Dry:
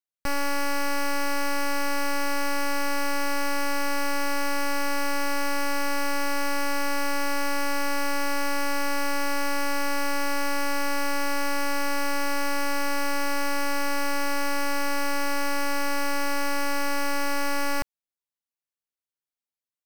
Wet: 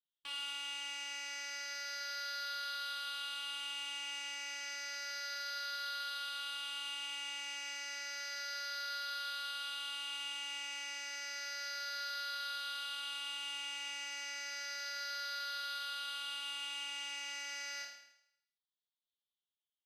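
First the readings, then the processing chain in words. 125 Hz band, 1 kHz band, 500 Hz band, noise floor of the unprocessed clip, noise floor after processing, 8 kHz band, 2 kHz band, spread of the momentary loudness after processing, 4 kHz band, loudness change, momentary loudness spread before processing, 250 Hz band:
can't be measured, −16.5 dB, −28.5 dB, below −85 dBFS, below −85 dBFS, −11.5 dB, −13.0 dB, 2 LU, −3.5 dB, −12.0 dB, 0 LU, below −35 dB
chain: rippled gain that drifts along the octave scale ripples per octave 0.64, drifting −0.31 Hz, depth 12 dB
resonant band-pass 3,400 Hz, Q 4.5
flutter between parallel walls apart 4.6 metres, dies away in 0.76 s
level −1.5 dB
Ogg Vorbis 48 kbit/s 44,100 Hz

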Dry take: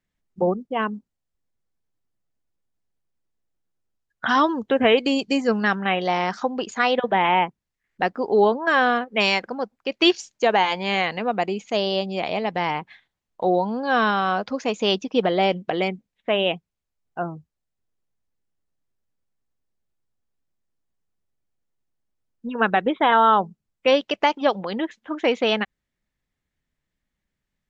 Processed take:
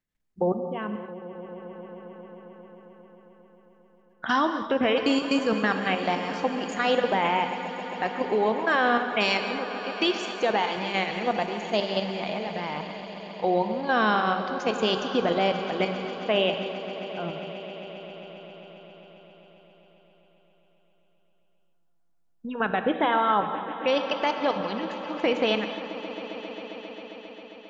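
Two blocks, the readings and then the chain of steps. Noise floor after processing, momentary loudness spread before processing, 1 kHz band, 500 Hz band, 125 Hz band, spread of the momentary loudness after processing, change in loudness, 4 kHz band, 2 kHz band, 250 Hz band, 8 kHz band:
−64 dBFS, 11 LU, −4.5 dB, −3.5 dB, −3.0 dB, 17 LU, −4.5 dB, −4.0 dB, −4.0 dB, −3.0 dB, can't be measured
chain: output level in coarse steps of 11 dB
brickwall limiter −13.5 dBFS, peak gain reduction 4.5 dB
echo that builds up and dies away 134 ms, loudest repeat 5, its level −18 dB
reverb whose tail is shaped and stops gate 280 ms flat, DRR 7.5 dB

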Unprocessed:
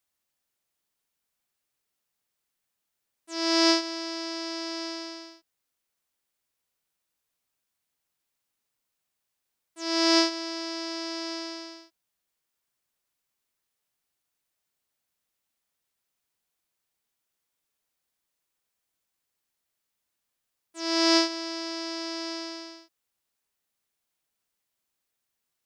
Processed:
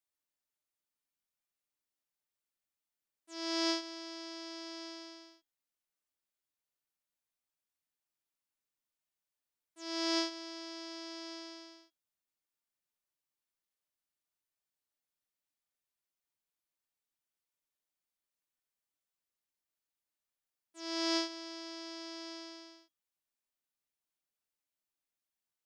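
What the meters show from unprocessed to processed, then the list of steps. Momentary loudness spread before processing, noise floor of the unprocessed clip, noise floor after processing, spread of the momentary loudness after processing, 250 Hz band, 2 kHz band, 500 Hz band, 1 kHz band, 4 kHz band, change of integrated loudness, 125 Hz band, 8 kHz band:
17 LU, −83 dBFS, below −85 dBFS, 17 LU, −11.0 dB, −11.5 dB, −11.5 dB, −11.5 dB, −11.0 dB, −11.5 dB, can't be measured, −11.0 dB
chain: tuned comb filter 300 Hz, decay 0.2 s, harmonics all, mix 60%
level −4.5 dB

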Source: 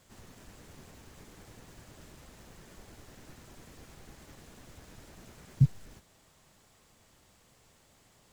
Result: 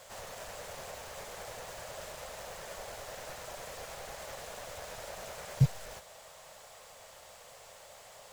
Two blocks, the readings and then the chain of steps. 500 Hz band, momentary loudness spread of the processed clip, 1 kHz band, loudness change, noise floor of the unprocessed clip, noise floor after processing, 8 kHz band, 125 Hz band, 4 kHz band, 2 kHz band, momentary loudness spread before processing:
+13.5 dB, 9 LU, +13.5 dB, −11.5 dB, −64 dBFS, −54 dBFS, +10.5 dB, −2.0 dB, +10.5 dB, +11.0 dB, 0 LU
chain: low shelf with overshoot 410 Hz −11 dB, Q 3
level +10.5 dB

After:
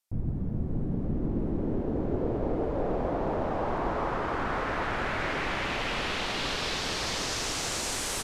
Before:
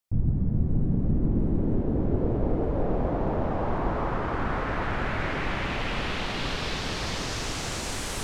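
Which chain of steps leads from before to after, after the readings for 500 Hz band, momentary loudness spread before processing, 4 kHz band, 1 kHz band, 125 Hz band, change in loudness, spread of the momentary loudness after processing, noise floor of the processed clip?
−0.5 dB, 4 LU, +1.5 dB, 0.0 dB, −6.5 dB, −2.0 dB, 2 LU, −32 dBFS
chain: bass and treble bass −7 dB, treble +4 dB
downsampling to 32,000 Hz

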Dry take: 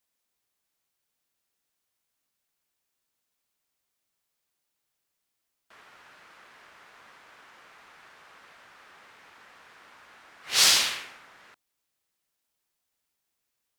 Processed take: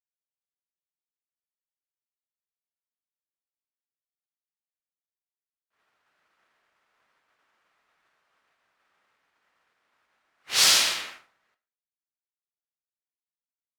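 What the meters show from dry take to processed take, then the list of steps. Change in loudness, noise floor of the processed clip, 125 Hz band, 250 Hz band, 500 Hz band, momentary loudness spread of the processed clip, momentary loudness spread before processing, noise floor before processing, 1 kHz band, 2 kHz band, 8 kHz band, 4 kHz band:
+1.5 dB, below −85 dBFS, can't be measured, +0.5 dB, +1.5 dB, 11 LU, 13 LU, −82 dBFS, +1.0 dB, +1.0 dB, +1.0 dB, +1.0 dB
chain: comb and all-pass reverb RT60 0.42 s, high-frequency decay 0.7×, pre-delay 55 ms, DRR 5 dB
downward expander −39 dBFS

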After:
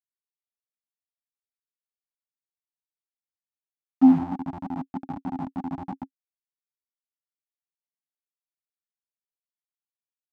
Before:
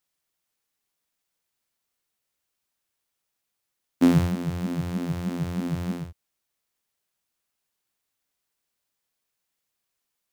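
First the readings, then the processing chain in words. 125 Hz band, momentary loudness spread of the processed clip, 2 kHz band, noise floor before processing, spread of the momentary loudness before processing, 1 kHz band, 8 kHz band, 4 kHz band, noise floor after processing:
−11.5 dB, 19 LU, below −10 dB, −81 dBFS, 11 LU, +5.0 dB, below −20 dB, below −15 dB, below −85 dBFS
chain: hold until the input has moved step −21.5 dBFS
sine wavefolder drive 5 dB, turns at −7 dBFS
pair of resonant band-passes 470 Hz, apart 1.6 octaves

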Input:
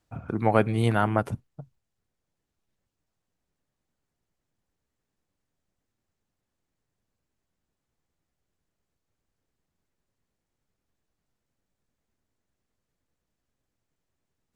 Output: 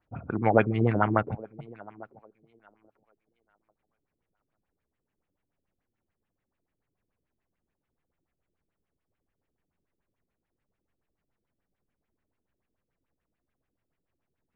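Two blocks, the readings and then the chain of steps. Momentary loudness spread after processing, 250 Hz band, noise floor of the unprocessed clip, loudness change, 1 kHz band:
18 LU, 0.0 dB, −83 dBFS, −0.5 dB, 0.0 dB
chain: feedback echo with a high-pass in the loop 842 ms, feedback 21%, high-pass 270 Hz, level −19 dB
auto-filter low-pass sine 6.9 Hz 310–2,700 Hz
level −2 dB

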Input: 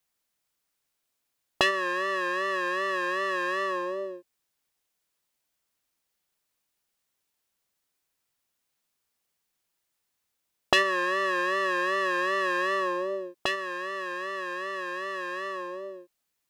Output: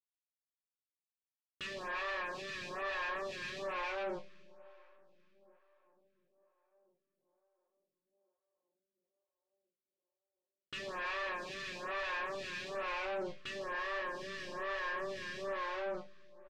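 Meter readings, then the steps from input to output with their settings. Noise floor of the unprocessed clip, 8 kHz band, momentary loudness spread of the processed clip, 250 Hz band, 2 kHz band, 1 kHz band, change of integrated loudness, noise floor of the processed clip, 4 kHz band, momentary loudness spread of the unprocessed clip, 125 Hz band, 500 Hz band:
−80 dBFS, −12.0 dB, 6 LU, −13.5 dB, −11.5 dB, −12.0 dB, −11.5 dB, below −85 dBFS, −12.0 dB, 9 LU, −5.0 dB, −10.5 dB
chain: loose part that buzzes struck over −43 dBFS, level −19 dBFS
leveller curve on the samples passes 3
fuzz pedal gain 33 dB, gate −40 dBFS
resonators tuned to a chord G2 sus4, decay 0.24 s
soft clipping −32.5 dBFS, distortion −7 dB
high-frequency loss of the air 170 metres
on a send: tape delay 696 ms, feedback 79%, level −23 dB, low-pass 1,200 Hz
on the sum: comb and all-pass reverb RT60 4.3 s, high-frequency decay 0.95×, pre-delay 0 ms, DRR 19 dB
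downsampling to 32,000 Hz
phaser with staggered stages 1.1 Hz
level −1 dB

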